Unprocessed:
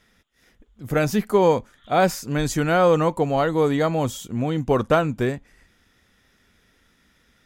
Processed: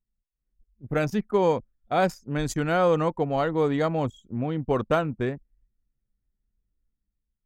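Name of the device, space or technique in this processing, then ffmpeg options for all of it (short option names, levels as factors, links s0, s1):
voice memo with heavy noise removal: -af "anlmdn=63.1,dynaudnorm=f=110:g=9:m=1.88,volume=0.398"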